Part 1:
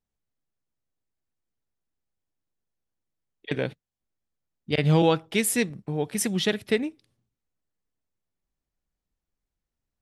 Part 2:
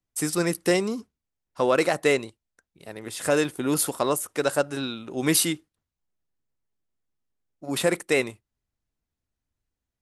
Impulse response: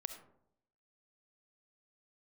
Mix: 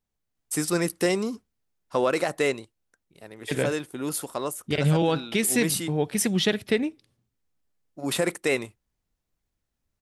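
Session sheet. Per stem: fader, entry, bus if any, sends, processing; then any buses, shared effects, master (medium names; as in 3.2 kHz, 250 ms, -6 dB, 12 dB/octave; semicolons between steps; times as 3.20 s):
+2.5 dB, 0.00 s, no send, none
0.0 dB, 0.35 s, no send, auto duck -6 dB, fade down 1.45 s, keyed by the first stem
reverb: none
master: peak limiter -12.5 dBFS, peak gain reduction 7 dB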